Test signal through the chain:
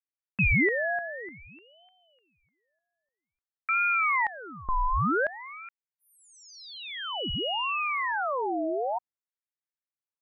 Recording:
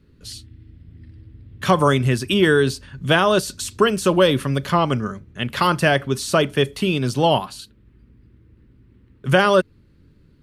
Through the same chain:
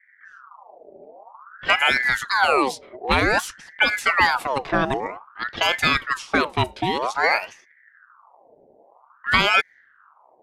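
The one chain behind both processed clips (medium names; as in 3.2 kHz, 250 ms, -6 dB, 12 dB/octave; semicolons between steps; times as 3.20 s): level-controlled noise filter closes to 480 Hz, open at -15 dBFS; ring modulator with a swept carrier 1.2 kHz, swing 60%, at 0.52 Hz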